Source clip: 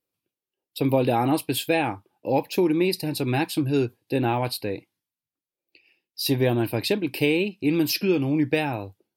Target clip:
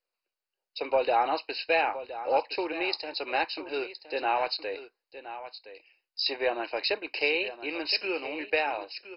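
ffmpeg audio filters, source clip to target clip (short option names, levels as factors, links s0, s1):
-af "highpass=f=510:w=0.5412,highpass=f=510:w=1.3066,aecho=1:1:1017:0.224" -ar 48000 -c:a mp2 -b:a 32k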